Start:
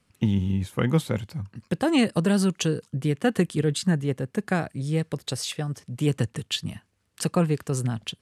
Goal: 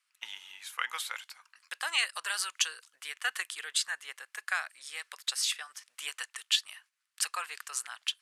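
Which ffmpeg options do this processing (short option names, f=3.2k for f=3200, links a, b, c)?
-af "agate=range=-7dB:threshold=-50dB:ratio=16:detection=peak,highpass=f=1.2k:w=0.5412,highpass=f=1.2k:w=1.3066,volume=1.5dB"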